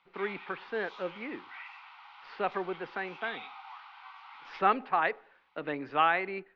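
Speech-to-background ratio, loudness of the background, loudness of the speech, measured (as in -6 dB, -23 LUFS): 15.0 dB, -47.5 LUFS, -32.5 LUFS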